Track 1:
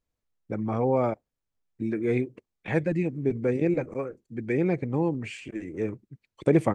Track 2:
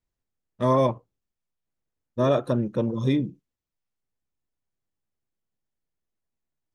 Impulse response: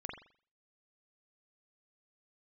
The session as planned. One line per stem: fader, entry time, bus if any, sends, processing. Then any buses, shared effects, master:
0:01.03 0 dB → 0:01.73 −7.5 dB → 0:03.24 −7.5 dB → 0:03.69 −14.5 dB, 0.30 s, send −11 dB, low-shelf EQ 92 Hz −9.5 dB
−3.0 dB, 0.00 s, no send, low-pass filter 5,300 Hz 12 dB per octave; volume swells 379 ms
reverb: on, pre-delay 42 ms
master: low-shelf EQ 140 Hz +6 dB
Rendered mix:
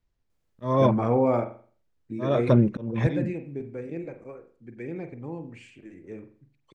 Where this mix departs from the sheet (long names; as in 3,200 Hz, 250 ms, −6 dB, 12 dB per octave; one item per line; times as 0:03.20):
stem 1: send −11 dB → −1.5 dB
stem 2 −3.0 dB → +4.5 dB